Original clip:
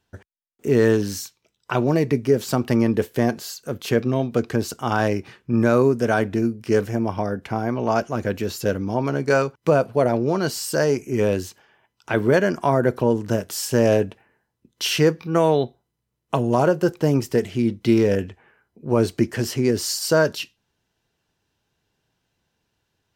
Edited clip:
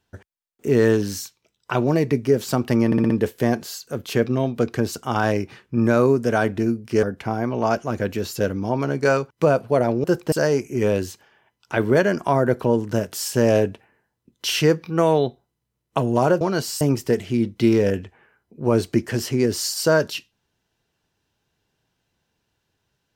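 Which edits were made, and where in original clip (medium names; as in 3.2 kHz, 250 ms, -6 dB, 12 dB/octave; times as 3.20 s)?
2.86 s: stutter 0.06 s, 5 plays
6.79–7.28 s: delete
10.29–10.69 s: swap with 16.78–17.06 s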